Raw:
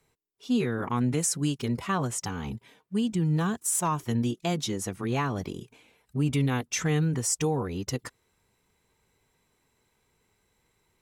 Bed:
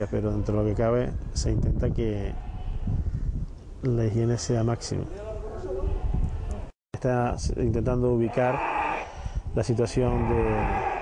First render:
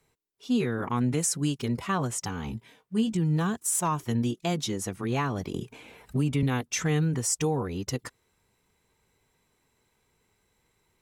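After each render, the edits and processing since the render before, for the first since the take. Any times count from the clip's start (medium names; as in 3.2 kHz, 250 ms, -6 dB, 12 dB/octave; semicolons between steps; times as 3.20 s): 2.47–3.17 s: doubling 18 ms -7 dB; 5.54–6.43 s: three bands compressed up and down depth 70%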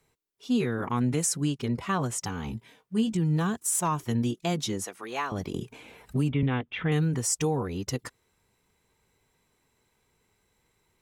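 1.43–1.87 s: treble shelf 6 kHz -8.5 dB; 4.84–5.32 s: high-pass 540 Hz; 6.32–6.92 s: Chebyshev low-pass 3.4 kHz, order 5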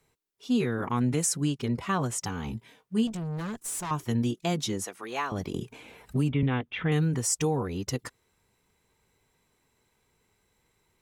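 3.07–3.91 s: valve stage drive 31 dB, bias 0.35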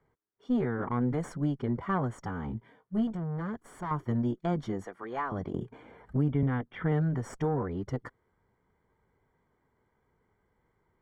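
single-diode clipper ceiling -24 dBFS; Savitzky-Golay filter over 41 samples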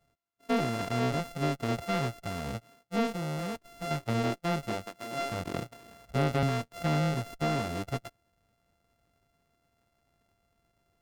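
sorted samples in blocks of 64 samples; slew-rate limiter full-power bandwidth 180 Hz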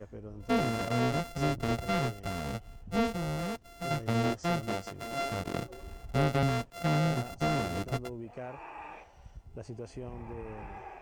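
add bed -18 dB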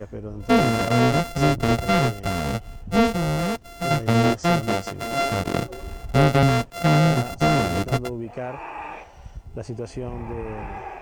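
trim +10.5 dB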